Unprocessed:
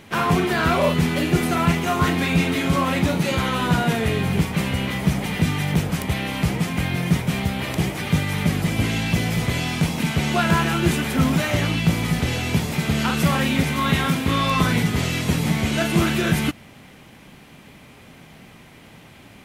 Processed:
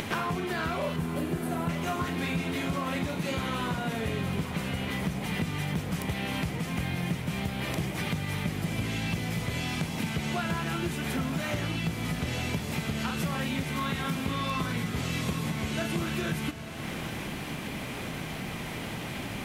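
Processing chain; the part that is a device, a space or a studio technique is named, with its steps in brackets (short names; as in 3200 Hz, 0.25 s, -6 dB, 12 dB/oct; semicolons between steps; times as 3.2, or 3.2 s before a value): 0.96–1.69 band shelf 2800 Hz -9 dB 2.7 oct; upward and downward compression (upward compressor, threshold -33 dBFS; compressor 6:1, threshold -34 dBFS, peak gain reduction 19.5 dB); diffused feedback echo 0.883 s, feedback 47%, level -11 dB; gain +4.5 dB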